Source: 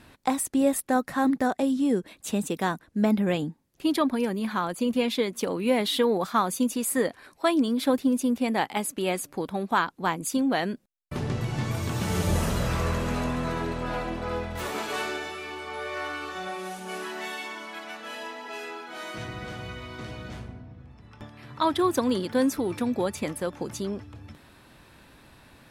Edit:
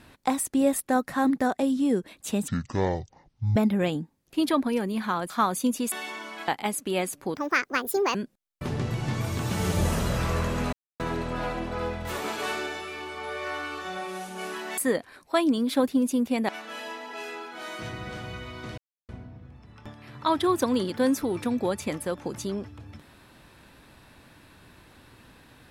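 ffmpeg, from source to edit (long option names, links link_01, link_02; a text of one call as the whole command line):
ffmpeg -i in.wav -filter_complex "[0:a]asplit=14[link_01][link_02][link_03][link_04][link_05][link_06][link_07][link_08][link_09][link_10][link_11][link_12][link_13][link_14];[link_01]atrim=end=2.484[link_15];[link_02]atrim=start=2.48:end=3.03,asetpts=PTS-STARTPTS,asetrate=22491,aresample=44100[link_16];[link_03]atrim=start=3.026:end=4.772[link_17];[link_04]atrim=start=6.258:end=6.882[link_18];[link_05]atrim=start=17.278:end=17.842[link_19];[link_06]atrim=start=8.588:end=9.464[link_20];[link_07]atrim=start=9.46:end=10.65,asetpts=PTS-STARTPTS,asetrate=65709,aresample=44100[link_21];[link_08]atrim=start=10.646:end=13.23,asetpts=PTS-STARTPTS,afade=type=out:start_time=2.58:duration=0.004:curve=hsin[link_22];[link_09]atrim=start=13.23:end=13.5,asetpts=PTS-STARTPTS,volume=0[link_23];[link_10]atrim=start=13.5:end=17.282,asetpts=PTS-STARTPTS,afade=type=in:duration=0.004:curve=hsin[link_24];[link_11]atrim=start=6.878:end=8.592[link_25];[link_12]atrim=start=17.838:end=20.13,asetpts=PTS-STARTPTS,afade=type=out:start_time=2.288:duration=0.004:curve=hsin[link_26];[link_13]atrim=start=20.13:end=20.44,asetpts=PTS-STARTPTS,volume=0[link_27];[link_14]atrim=start=20.44,asetpts=PTS-STARTPTS,afade=type=in:duration=0.004:curve=hsin[link_28];[link_15][link_16]acrossfade=duration=0.004:curve1=hsin:curve2=hsin[link_29];[link_29][link_17]acrossfade=duration=0.004:curve1=hsin:curve2=hsin[link_30];[link_30][link_18]acrossfade=duration=0.004:curve1=hsin:curve2=hsin[link_31];[link_31][link_19]acrossfade=duration=0.004:curve1=hsin:curve2=hsin[link_32];[link_32][link_20]acrossfade=duration=0.004:curve1=hsin:curve2=hsin[link_33];[link_33][link_21]acrossfade=duration=0.004:curve1=hsin:curve2=hsin[link_34];[link_22][link_23][link_24]concat=n=3:v=0:a=1[link_35];[link_34][link_35]acrossfade=duration=0.004:curve1=hsin:curve2=hsin[link_36];[link_36][link_25]acrossfade=duration=0.004:curve1=hsin:curve2=hsin[link_37];[link_26][link_27][link_28]concat=n=3:v=0:a=1[link_38];[link_37][link_38]acrossfade=duration=0.004:curve1=hsin:curve2=hsin" out.wav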